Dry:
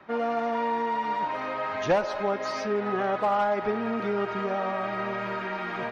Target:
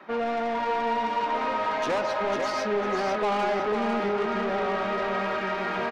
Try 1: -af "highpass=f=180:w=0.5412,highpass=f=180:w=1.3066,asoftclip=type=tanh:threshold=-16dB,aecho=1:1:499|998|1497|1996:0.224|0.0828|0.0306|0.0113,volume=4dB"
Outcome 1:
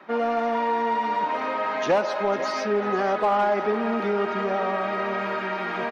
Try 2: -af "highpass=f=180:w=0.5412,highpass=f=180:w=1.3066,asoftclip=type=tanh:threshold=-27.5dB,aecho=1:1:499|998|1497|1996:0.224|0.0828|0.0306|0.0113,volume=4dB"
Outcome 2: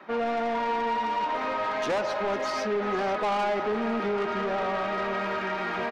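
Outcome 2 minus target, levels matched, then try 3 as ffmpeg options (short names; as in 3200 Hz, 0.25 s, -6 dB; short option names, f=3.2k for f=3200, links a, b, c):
echo-to-direct -8.5 dB
-af "highpass=f=180:w=0.5412,highpass=f=180:w=1.3066,asoftclip=type=tanh:threshold=-27.5dB,aecho=1:1:499|998|1497|1996|2495:0.596|0.22|0.0815|0.0302|0.0112,volume=4dB"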